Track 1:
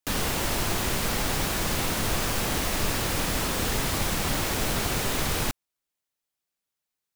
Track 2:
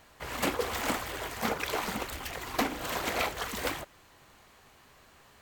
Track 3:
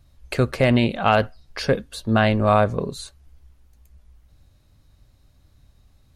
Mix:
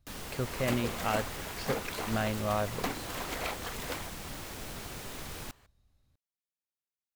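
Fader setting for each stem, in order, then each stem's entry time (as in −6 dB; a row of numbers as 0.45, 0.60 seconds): −15.0, −6.0, −14.0 decibels; 0.00, 0.25, 0.00 seconds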